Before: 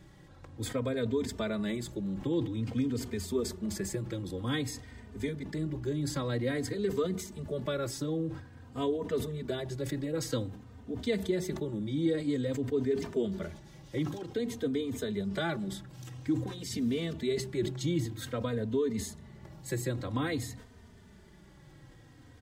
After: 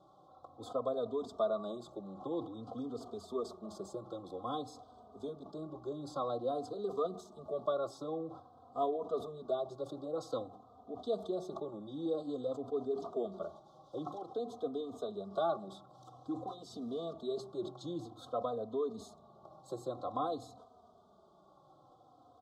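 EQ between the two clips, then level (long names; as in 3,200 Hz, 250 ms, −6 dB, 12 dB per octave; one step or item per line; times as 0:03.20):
formant filter a
elliptic band-stop filter 1,300–3,600 Hz, stop band 40 dB
+12.0 dB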